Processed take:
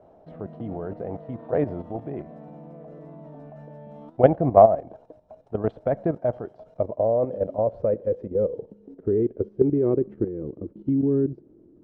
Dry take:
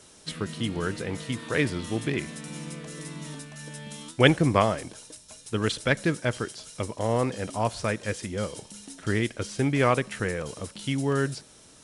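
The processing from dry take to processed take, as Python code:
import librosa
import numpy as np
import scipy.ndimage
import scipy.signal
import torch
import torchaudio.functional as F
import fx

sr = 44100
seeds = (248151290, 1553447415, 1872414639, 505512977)

y = fx.filter_sweep_lowpass(x, sr, from_hz=690.0, to_hz=340.0, start_s=6.46, end_s=10.35, q=6.4)
y = fx.level_steps(y, sr, step_db=11)
y = y * librosa.db_to_amplitude(1.5)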